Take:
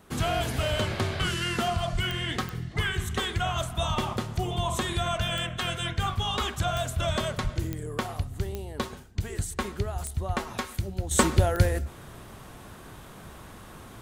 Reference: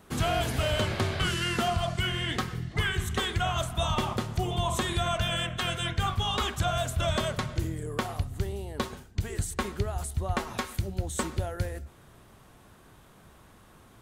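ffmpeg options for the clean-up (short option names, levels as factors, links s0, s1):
-filter_complex "[0:a]adeclick=t=4,asplit=3[s0][s1][s2];[s0]afade=t=out:st=1.92:d=0.02[s3];[s1]highpass=f=140:w=0.5412,highpass=f=140:w=1.3066,afade=t=in:st=1.92:d=0.02,afade=t=out:st=2.04:d=0.02[s4];[s2]afade=t=in:st=2.04:d=0.02[s5];[s3][s4][s5]amix=inputs=3:normalize=0,asplit=3[s6][s7][s8];[s6]afade=t=out:st=7.43:d=0.02[s9];[s7]highpass=f=140:w=0.5412,highpass=f=140:w=1.3066,afade=t=in:st=7.43:d=0.02,afade=t=out:st=7.55:d=0.02[s10];[s8]afade=t=in:st=7.55:d=0.02[s11];[s9][s10][s11]amix=inputs=3:normalize=0,asetnsamples=n=441:p=0,asendcmd='11.11 volume volume -9.5dB',volume=1"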